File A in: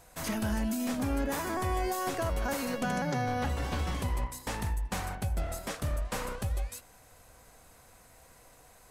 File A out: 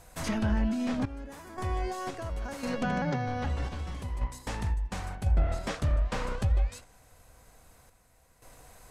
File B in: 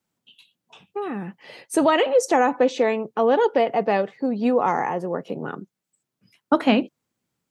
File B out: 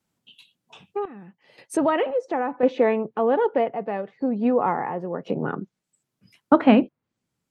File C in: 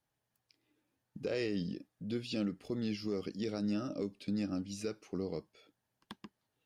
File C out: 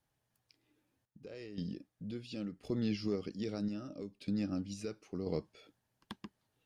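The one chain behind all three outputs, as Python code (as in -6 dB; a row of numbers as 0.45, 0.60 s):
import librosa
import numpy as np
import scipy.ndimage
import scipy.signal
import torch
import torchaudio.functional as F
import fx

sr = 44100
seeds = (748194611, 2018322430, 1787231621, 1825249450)

y = fx.tremolo_random(x, sr, seeds[0], hz=1.9, depth_pct=85)
y = fx.env_lowpass_down(y, sr, base_hz=2100.0, full_db=-26.5)
y = fx.low_shelf(y, sr, hz=130.0, db=6.0)
y = y * librosa.db_to_amplitude(3.0)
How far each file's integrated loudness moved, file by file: +1.0, -1.5, -1.5 LU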